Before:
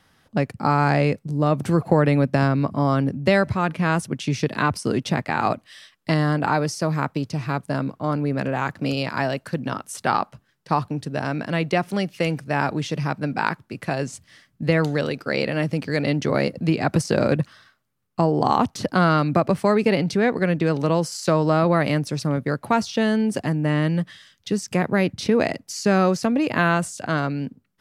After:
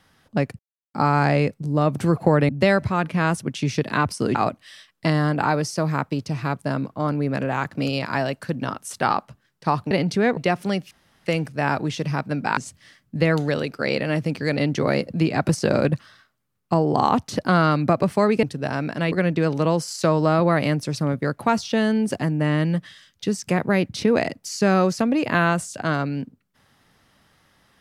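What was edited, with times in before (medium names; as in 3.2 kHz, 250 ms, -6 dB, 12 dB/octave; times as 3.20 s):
0.59 s: insert silence 0.35 s
2.14–3.14 s: delete
5.00–5.39 s: delete
10.95–11.64 s: swap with 19.90–20.36 s
12.18 s: insert room tone 0.35 s
13.49–14.04 s: delete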